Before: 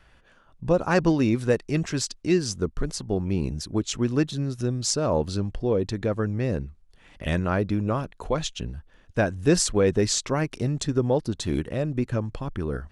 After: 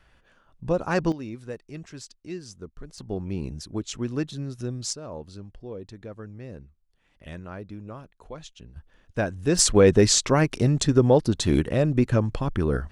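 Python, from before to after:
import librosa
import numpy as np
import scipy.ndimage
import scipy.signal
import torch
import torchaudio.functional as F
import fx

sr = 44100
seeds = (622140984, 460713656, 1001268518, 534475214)

y = fx.gain(x, sr, db=fx.steps((0.0, -3.0), (1.12, -14.0), (2.98, -5.0), (4.93, -14.0), (8.76, -3.0), (9.59, 5.0)))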